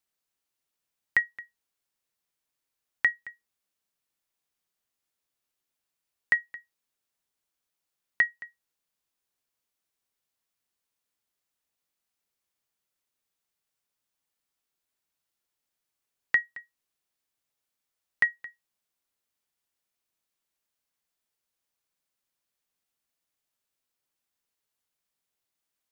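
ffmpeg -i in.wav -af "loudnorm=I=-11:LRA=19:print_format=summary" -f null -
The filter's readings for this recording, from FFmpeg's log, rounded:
Input Integrated:    -27.8 LUFS
Input True Peak:     -11.4 dBTP
Input LRA:             3.1 LU
Input Threshold:     -39.9 LUFS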